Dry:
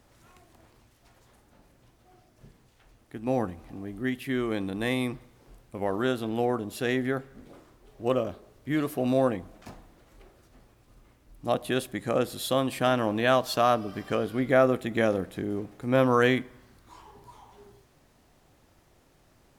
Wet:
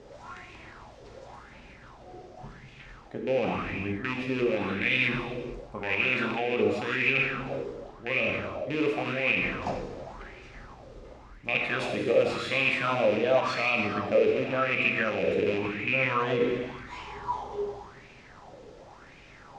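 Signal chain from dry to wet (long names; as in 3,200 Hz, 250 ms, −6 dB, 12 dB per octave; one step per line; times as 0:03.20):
loose part that buzzes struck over −30 dBFS, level −17 dBFS
reversed playback
downward compressor 16 to 1, threshold −34 dBFS, peak gain reduction 19 dB
reversed playback
low-pass filter 6,500 Hz 24 dB per octave
reverb whose tail is shaped and stops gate 490 ms falling, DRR −0.5 dB
gain on a spectral selection 0:06.37–0:06.61, 1,500–3,700 Hz +6 dB
brickwall limiter −26.5 dBFS, peak gain reduction 8 dB
auto-filter bell 0.91 Hz 440–2,500 Hz +16 dB
level +4.5 dB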